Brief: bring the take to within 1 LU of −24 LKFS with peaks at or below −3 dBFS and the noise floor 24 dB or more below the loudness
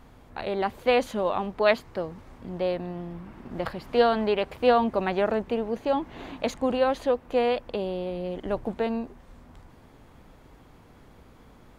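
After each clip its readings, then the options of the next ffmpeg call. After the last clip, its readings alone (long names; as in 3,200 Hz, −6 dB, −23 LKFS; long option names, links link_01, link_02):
integrated loudness −27.0 LKFS; sample peak −8.5 dBFS; target loudness −24.0 LKFS
→ -af "volume=3dB"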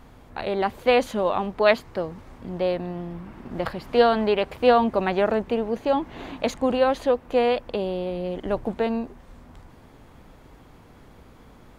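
integrated loudness −24.0 LKFS; sample peak −5.5 dBFS; background noise floor −50 dBFS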